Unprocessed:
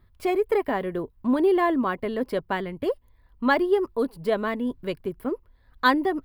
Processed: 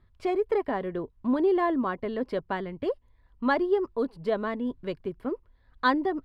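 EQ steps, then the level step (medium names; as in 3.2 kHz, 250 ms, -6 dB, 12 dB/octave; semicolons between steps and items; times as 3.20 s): low-pass 5.4 kHz 12 dB/octave; dynamic bell 2.5 kHz, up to -5 dB, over -41 dBFS, Q 1.5; -3.0 dB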